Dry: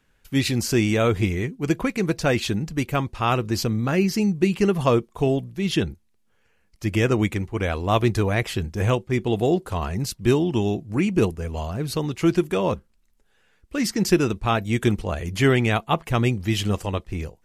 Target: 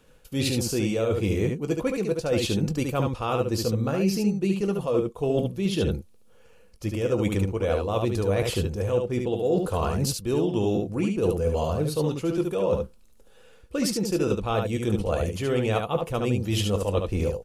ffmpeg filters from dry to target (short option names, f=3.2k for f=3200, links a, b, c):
-af "equalizer=f=500:t=o:w=0.33:g=12,equalizer=f=2k:t=o:w=0.33:g=-9,equalizer=f=10k:t=o:w=0.33:g=4,areverse,acompressor=threshold=-29dB:ratio=12,areverse,bandreject=f=1.6k:w=16,aecho=1:1:20|72:0.224|0.596,volume=6.5dB"